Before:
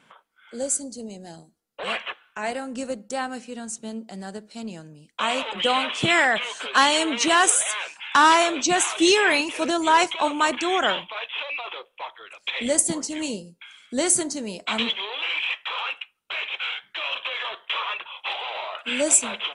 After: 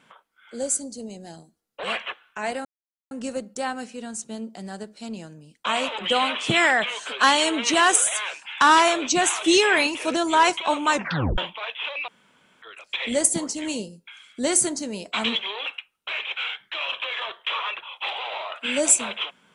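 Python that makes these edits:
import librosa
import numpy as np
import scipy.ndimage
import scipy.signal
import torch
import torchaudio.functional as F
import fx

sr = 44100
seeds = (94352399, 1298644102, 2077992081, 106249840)

y = fx.edit(x, sr, fx.insert_silence(at_s=2.65, length_s=0.46),
    fx.tape_stop(start_s=10.46, length_s=0.46),
    fx.room_tone_fill(start_s=11.62, length_s=0.54),
    fx.cut(start_s=15.2, length_s=0.69), tone=tone)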